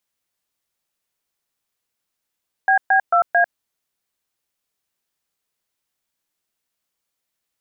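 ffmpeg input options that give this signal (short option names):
-f lavfi -i "aevalsrc='0.188*clip(min(mod(t,0.222),0.097-mod(t,0.222))/0.002,0,1)*(eq(floor(t/0.222),0)*(sin(2*PI*770*mod(t,0.222))+sin(2*PI*1633*mod(t,0.222)))+eq(floor(t/0.222),1)*(sin(2*PI*770*mod(t,0.222))+sin(2*PI*1633*mod(t,0.222)))+eq(floor(t/0.222),2)*(sin(2*PI*697*mod(t,0.222))+sin(2*PI*1336*mod(t,0.222)))+eq(floor(t/0.222),3)*(sin(2*PI*697*mod(t,0.222))+sin(2*PI*1633*mod(t,0.222))))':d=0.888:s=44100"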